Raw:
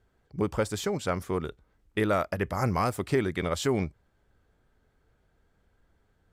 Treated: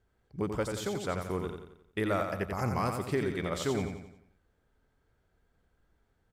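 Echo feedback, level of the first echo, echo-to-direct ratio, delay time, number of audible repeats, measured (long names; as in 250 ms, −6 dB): 46%, −6.0 dB, −5.0 dB, 88 ms, 5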